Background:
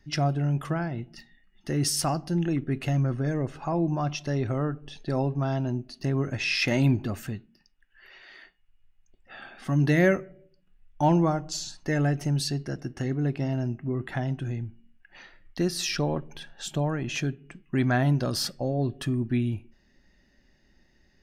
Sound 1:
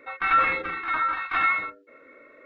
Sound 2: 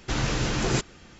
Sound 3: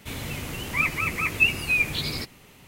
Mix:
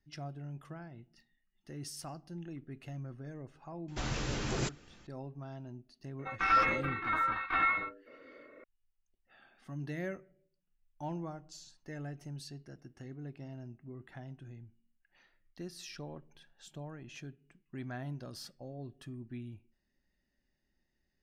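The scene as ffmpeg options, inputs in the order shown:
-filter_complex "[0:a]volume=-18dB[a];[1:a]tiltshelf=f=730:g=4[b];[2:a]atrim=end=1.19,asetpts=PTS-STARTPTS,volume=-9.5dB,afade=t=in:d=0.004:c=hsin,afade=t=out:st=1.186:d=0.004:c=hsin,adelay=3880[c];[b]atrim=end=2.45,asetpts=PTS-STARTPTS,volume=-4dB,afade=t=in:d=0.004:c=hsin,afade=t=out:st=2.446:d=0.004:c=hsin,adelay=6190[d];[a][c][d]amix=inputs=3:normalize=0"

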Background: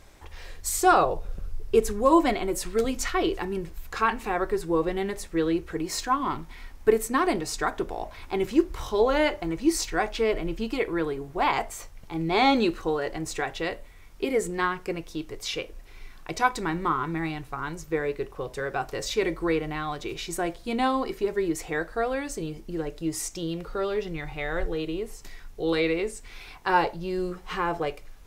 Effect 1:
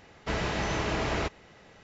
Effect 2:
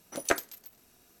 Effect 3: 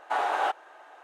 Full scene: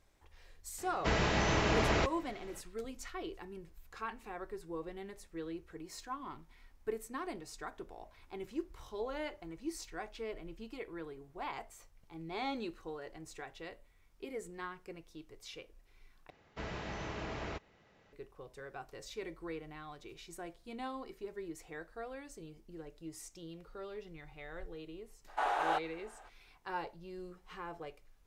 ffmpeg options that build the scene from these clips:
-filter_complex "[1:a]asplit=2[a][b];[0:a]volume=-17.5dB[c];[b]highshelf=f=6k:g=-7.5[d];[c]asplit=2[e][f];[e]atrim=end=16.304[g];[d]atrim=end=1.83,asetpts=PTS-STARTPTS,volume=-11.5dB[h];[f]atrim=start=18.126[i];[a]atrim=end=1.83,asetpts=PTS-STARTPTS,volume=-0.5dB,afade=t=in:d=0.004:c=hsin,afade=t=out:st=1.826:d=0.004:c=hsin,adelay=780[j];[3:a]atrim=end=1.03,asetpts=PTS-STARTPTS,volume=-6dB,afade=t=in:d=0.02,afade=t=out:st=1.01:d=0.02,adelay=25270[k];[g][h]acrossfade=d=0.004:c1=hsin:c2=hsin[l];[l][i]acrossfade=d=0.004:c1=hsin:c2=hsin[m];[m][j][k]amix=inputs=3:normalize=0"

